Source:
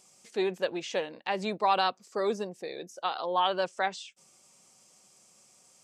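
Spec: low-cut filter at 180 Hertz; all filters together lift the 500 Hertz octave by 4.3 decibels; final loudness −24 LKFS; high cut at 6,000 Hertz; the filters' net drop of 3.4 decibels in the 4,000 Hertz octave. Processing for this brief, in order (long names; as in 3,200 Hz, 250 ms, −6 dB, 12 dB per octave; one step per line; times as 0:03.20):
high-pass filter 180 Hz
low-pass filter 6,000 Hz
parametric band 500 Hz +5.5 dB
parametric band 4,000 Hz −4 dB
level +4.5 dB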